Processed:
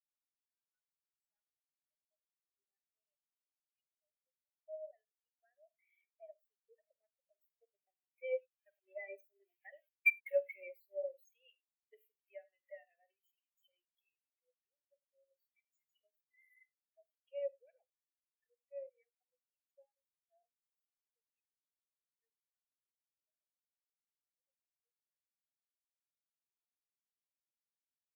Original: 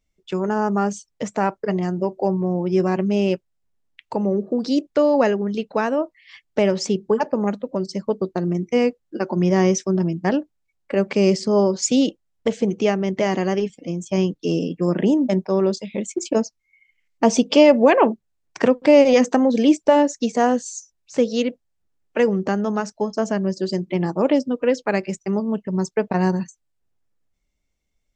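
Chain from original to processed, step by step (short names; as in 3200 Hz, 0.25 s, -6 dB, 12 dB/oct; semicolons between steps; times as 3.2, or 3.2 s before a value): switching spikes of -12.5 dBFS; Doppler pass-by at 10.23, 20 m/s, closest 2.1 m; HPF 700 Hz 24 dB/oct; compressor 5:1, threshold -48 dBFS, peak gain reduction 22 dB; fixed phaser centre 2400 Hz, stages 4; on a send: tapped delay 48/74/101 ms -10/-12/-9.5 dB; on the sum: spectral expander 4:1; gain +9.5 dB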